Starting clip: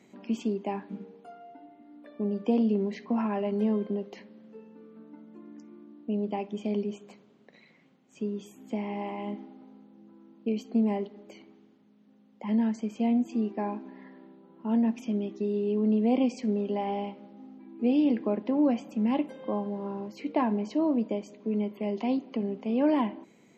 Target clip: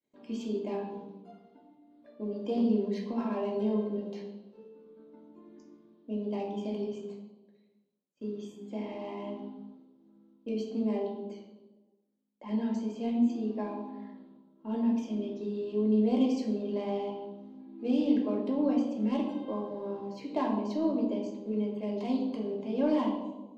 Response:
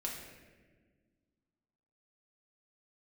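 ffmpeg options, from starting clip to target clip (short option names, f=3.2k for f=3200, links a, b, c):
-filter_complex "[0:a]adynamicsmooth=sensitivity=3:basefreq=3.6k,agate=range=-33dB:threshold=-46dB:ratio=3:detection=peak,aexciter=amount=3.8:drive=5.8:freq=3.4k[a];[1:a]atrim=start_sample=2205,asetrate=74970,aresample=44100[b];[a][b]afir=irnorm=-1:irlink=0"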